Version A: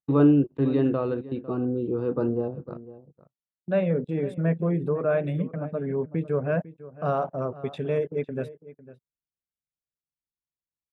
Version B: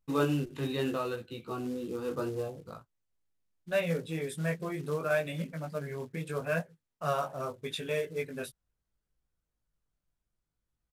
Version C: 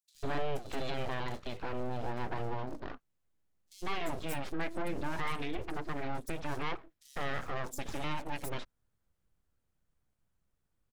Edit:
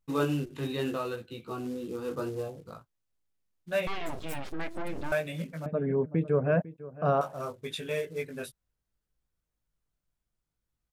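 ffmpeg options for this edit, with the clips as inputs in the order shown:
ffmpeg -i take0.wav -i take1.wav -i take2.wav -filter_complex "[1:a]asplit=3[link_01][link_02][link_03];[link_01]atrim=end=3.872[link_04];[2:a]atrim=start=3.868:end=5.122[link_05];[link_02]atrim=start=5.118:end=5.662[link_06];[0:a]atrim=start=5.658:end=7.212[link_07];[link_03]atrim=start=7.208[link_08];[link_04][link_05]acrossfade=duration=0.004:curve1=hsin:curve2=hsin[link_09];[link_09][link_06]acrossfade=duration=0.004:curve1=hsin:curve2=hsin[link_10];[link_10][link_07]acrossfade=duration=0.004:curve1=hsin:curve2=hsin[link_11];[link_11][link_08]acrossfade=duration=0.004:curve1=hsin:curve2=hsin" out.wav

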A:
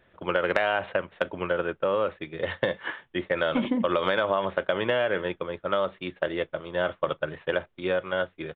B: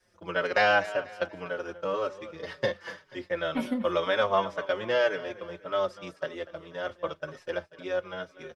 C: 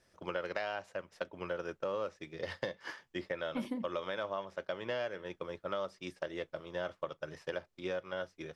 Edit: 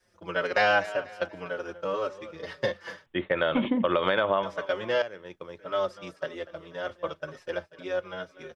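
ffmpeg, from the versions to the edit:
ffmpeg -i take0.wav -i take1.wav -i take2.wav -filter_complex "[1:a]asplit=3[link_01][link_02][link_03];[link_01]atrim=end=3.062[link_04];[0:a]atrim=start=3.058:end=4.432[link_05];[link_02]atrim=start=4.428:end=5.022[link_06];[2:a]atrim=start=5.018:end=5.592[link_07];[link_03]atrim=start=5.588[link_08];[link_04][link_05]acrossfade=duration=0.004:curve1=hsin:curve2=hsin[link_09];[link_09][link_06]acrossfade=duration=0.004:curve1=hsin:curve2=hsin[link_10];[link_10][link_07]acrossfade=duration=0.004:curve1=hsin:curve2=hsin[link_11];[link_11][link_08]acrossfade=duration=0.004:curve1=hsin:curve2=hsin" out.wav

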